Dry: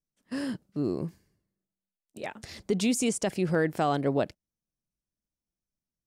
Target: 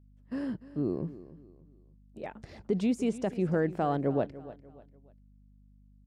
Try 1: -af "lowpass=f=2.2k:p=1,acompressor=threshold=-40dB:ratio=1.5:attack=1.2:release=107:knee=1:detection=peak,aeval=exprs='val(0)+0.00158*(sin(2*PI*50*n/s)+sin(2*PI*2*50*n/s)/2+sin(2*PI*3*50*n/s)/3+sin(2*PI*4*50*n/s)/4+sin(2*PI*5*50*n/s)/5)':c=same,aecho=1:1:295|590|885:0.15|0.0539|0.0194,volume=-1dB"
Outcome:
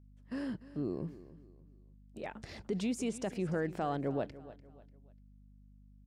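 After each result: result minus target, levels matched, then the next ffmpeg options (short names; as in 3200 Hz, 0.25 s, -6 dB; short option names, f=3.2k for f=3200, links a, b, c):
compressor: peak gain reduction +7.5 dB; 2000 Hz band +3.5 dB
-af "lowpass=f=2.2k:p=1,aeval=exprs='val(0)+0.00158*(sin(2*PI*50*n/s)+sin(2*PI*2*50*n/s)/2+sin(2*PI*3*50*n/s)/3+sin(2*PI*4*50*n/s)/4+sin(2*PI*5*50*n/s)/5)':c=same,aecho=1:1:295|590|885:0.15|0.0539|0.0194,volume=-1dB"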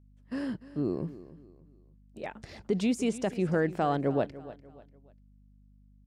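2000 Hz band +3.5 dB
-af "lowpass=f=950:p=1,aeval=exprs='val(0)+0.00158*(sin(2*PI*50*n/s)+sin(2*PI*2*50*n/s)/2+sin(2*PI*3*50*n/s)/3+sin(2*PI*4*50*n/s)/4+sin(2*PI*5*50*n/s)/5)':c=same,aecho=1:1:295|590|885:0.15|0.0539|0.0194,volume=-1dB"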